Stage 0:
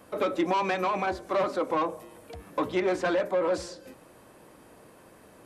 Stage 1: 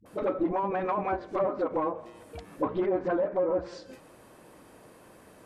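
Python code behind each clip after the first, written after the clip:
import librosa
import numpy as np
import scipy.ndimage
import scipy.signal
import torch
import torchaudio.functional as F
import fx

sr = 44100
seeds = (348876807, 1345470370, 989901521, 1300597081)

y = np.minimum(x, 2.0 * 10.0 ** (-20.5 / 20.0) - x)
y = fx.dispersion(y, sr, late='highs', ms=59.0, hz=420.0)
y = fx.env_lowpass_down(y, sr, base_hz=830.0, full_db=-22.5)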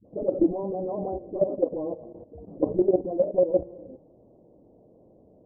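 y = np.r_[np.sort(x[:len(x) // 8 * 8].reshape(-1, 8), axis=1).ravel(), x[len(x) // 8 * 8:]]
y = scipy.signal.sosfilt(scipy.signal.butter(6, 680.0, 'lowpass', fs=sr, output='sos'), y)
y = fx.level_steps(y, sr, step_db=13)
y = F.gain(torch.from_numpy(y), 9.0).numpy()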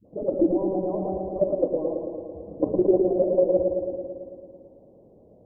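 y = fx.echo_wet_lowpass(x, sr, ms=111, feedback_pct=70, hz=1100.0, wet_db=-4.0)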